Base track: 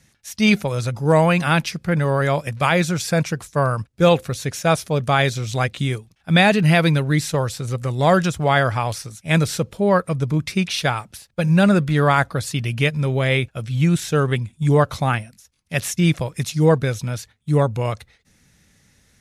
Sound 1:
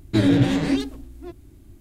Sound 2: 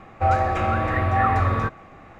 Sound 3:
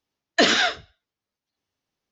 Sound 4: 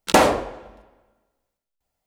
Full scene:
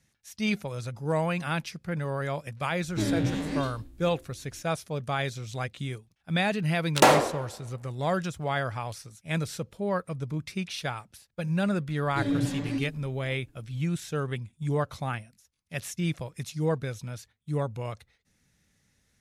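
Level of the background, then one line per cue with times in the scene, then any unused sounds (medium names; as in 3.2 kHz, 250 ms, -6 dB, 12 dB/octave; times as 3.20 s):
base track -12 dB
2.83 s: add 1 -10.5 dB + spectral sustain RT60 0.37 s
6.88 s: add 4 -2 dB + high-pass 280 Hz 6 dB/octave
12.02 s: add 1 -15 dB + comb 7 ms, depth 97%
not used: 2, 3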